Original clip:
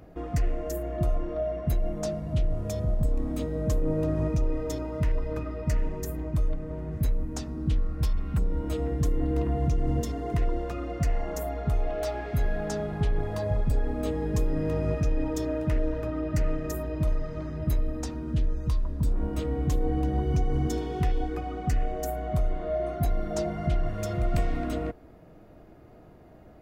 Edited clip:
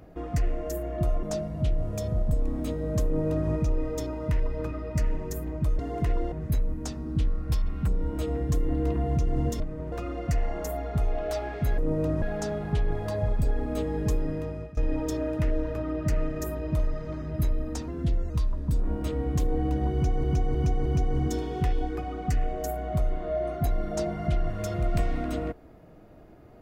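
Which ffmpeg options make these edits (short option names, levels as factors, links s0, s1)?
-filter_complex "[0:a]asplit=14[s0][s1][s2][s3][s4][s5][s6][s7][s8][s9][s10][s11][s12][s13];[s0]atrim=end=1.232[s14];[s1]atrim=start=1.948:end=6.512[s15];[s2]atrim=start=10.108:end=10.642[s16];[s3]atrim=start=6.828:end=10.112[s17];[s4]atrim=start=6.508:end=6.832[s18];[s5]atrim=start=10.638:end=12.502[s19];[s6]atrim=start=3.768:end=4.212[s20];[s7]atrim=start=12.498:end=15.05,asetpts=PTS-STARTPTS,afade=t=out:st=1.912:d=0.64:silence=0.0944061[s21];[s8]atrim=start=15.05:end=18.164,asetpts=PTS-STARTPTS,afade=t=in:d=0.004:c=hsin:silence=0.0944061[s22];[s9]atrim=start=18.16:end=18.62,asetpts=PTS-STARTPTS,asetrate=48510,aresample=44100[s23];[s10]atrim=start=18.616:end=20.562[s24];[s11]atrim=start=20.248:end=20.562[s25];[s12]atrim=start=20.248:end=20.562[s26];[s13]atrim=start=20.248[s27];[s14][s15]acrossfade=d=0.004:c1=hsin:c2=hsin[s28];[s28][s16]acrossfade=d=0.004:c1=hsin:c2=hsin[s29];[s29][s17]acrossfade=d=0.004:c1=hsin:c2=hsin[s30];[s30][s18]acrossfade=d=0.004:c1=hsin:c2=hsin[s31];[s31][s19]acrossfade=d=0.004:c1=hsin:c2=hsin[s32];[s32][s20]acrossfade=d=0.004:c1=hsin:c2=hsin[s33];[s21][s22]concat=n=2:v=0:a=1[s34];[s33][s34]acrossfade=d=0.004:c1=hsin:c2=hsin[s35];[s35][s23]acrossfade=d=0.004:c1=hsin:c2=hsin[s36];[s36][s24]acrossfade=d=0.004:c1=hsin:c2=hsin[s37];[s37][s25]acrossfade=d=0.004:c1=hsin:c2=hsin[s38];[s38][s26]acrossfade=d=0.004:c1=hsin:c2=hsin[s39];[s39][s27]acrossfade=d=0.004:c1=hsin:c2=hsin"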